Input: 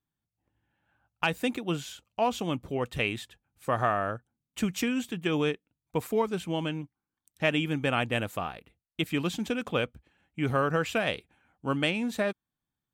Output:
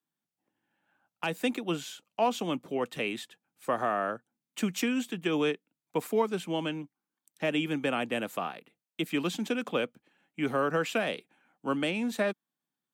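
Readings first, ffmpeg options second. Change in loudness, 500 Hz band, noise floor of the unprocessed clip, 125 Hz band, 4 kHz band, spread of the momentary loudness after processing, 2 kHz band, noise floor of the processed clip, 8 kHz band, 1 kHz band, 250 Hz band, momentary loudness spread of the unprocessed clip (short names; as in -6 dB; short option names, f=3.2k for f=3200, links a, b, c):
-1.5 dB, -0.5 dB, under -85 dBFS, -7.0 dB, -2.0 dB, 12 LU, -2.5 dB, under -85 dBFS, 0.0 dB, -1.5 dB, -0.5 dB, 12 LU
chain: -filter_complex "[0:a]highpass=f=180:w=0.5412,highpass=f=180:w=1.3066,acrossover=split=360|600|6900[a][b][c][d];[c]alimiter=limit=-21dB:level=0:latency=1:release=110[e];[a][b][e][d]amix=inputs=4:normalize=0"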